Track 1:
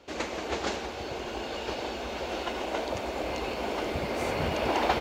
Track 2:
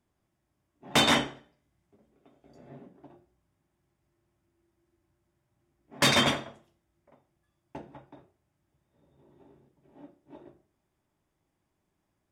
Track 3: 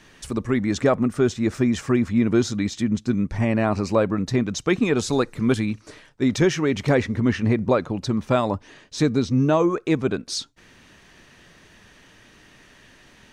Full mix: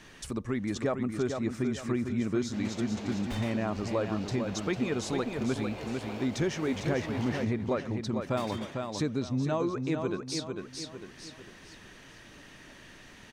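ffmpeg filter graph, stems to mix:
-filter_complex "[0:a]asoftclip=type=tanh:threshold=-28.5dB,adelay=2450,volume=-1dB,asplit=2[a][b];[b]volume=-15.5dB[c];[1:a]aeval=exprs='0.188*(cos(1*acos(clip(val(0)/0.188,-1,1)))-cos(1*PI/2))+0.0237*(cos(5*acos(clip(val(0)/0.188,-1,1)))-cos(5*PI/2))':c=same,adelay=2350,volume=-13.5dB,asplit=2[d][e];[e]volume=-20.5dB[f];[2:a]volume=-1dB,asplit=2[g][h];[h]volume=-7dB[i];[c][f][i]amix=inputs=3:normalize=0,aecho=0:1:450|900|1350|1800:1|0.31|0.0961|0.0298[j];[a][d][g][j]amix=inputs=4:normalize=0,acompressor=threshold=-44dB:ratio=1.5"

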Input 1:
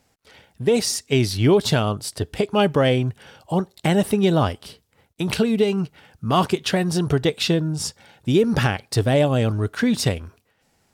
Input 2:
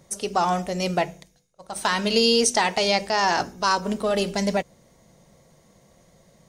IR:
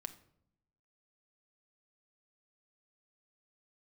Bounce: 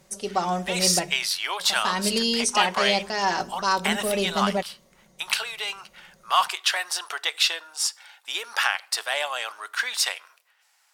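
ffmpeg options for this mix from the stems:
-filter_complex "[0:a]highpass=f=940:w=0.5412,highpass=f=940:w=1.3066,volume=0dB,asplit=2[a][b];[b]volume=-3.5dB[c];[1:a]aecho=1:1:5.3:0.55,volume=-4.5dB[d];[2:a]atrim=start_sample=2205[e];[c][e]afir=irnorm=-1:irlink=0[f];[a][d][f]amix=inputs=3:normalize=0,equalizer=f=140:t=o:w=0.67:g=-3"

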